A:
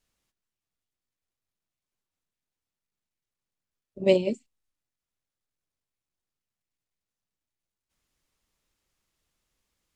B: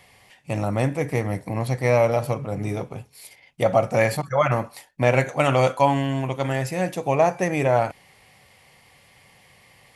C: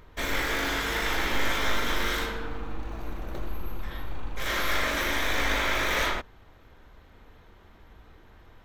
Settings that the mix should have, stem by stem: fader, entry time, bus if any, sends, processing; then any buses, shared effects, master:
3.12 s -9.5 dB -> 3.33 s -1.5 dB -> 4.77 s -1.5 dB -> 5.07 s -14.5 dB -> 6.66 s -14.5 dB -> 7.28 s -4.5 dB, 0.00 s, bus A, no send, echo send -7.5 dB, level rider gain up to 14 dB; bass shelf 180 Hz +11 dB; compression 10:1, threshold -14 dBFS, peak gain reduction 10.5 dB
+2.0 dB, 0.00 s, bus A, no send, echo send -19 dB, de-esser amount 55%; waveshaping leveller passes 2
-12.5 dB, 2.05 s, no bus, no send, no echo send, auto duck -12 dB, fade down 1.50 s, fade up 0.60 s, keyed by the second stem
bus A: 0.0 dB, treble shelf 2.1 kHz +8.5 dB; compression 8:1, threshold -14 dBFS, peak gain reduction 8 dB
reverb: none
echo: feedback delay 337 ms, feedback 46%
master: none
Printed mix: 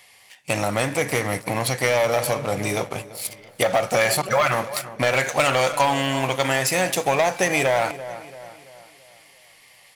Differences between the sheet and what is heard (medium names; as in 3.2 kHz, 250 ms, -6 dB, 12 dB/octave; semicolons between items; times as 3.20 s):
stem A -9.5 dB -> -19.0 dB; stem C -12.5 dB -> -20.0 dB; master: extra bass shelf 320 Hz -11.5 dB